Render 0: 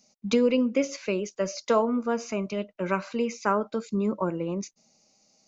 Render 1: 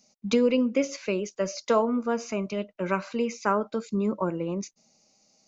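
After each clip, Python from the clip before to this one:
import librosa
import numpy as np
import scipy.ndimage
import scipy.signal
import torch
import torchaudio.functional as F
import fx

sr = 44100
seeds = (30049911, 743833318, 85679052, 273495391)

y = x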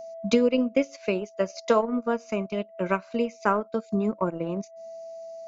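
y = x + 10.0 ** (-37.0 / 20.0) * np.sin(2.0 * np.pi * 660.0 * np.arange(len(x)) / sr)
y = fx.transient(y, sr, attack_db=3, sustain_db=-12)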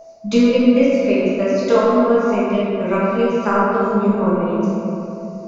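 y = fx.room_shoebox(x, sr, seeds[0], volume_m3=140.0, walls='hard', distance_m=1.3)
y = y * librosa.db_to_amplitude(-1.5)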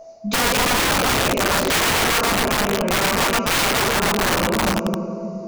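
y = (np.mod(10.0 ** (13.5 / 20.0) * x + 1.0, 2.0) - 1.0) / 10.0 ** (13.5 / 20.0)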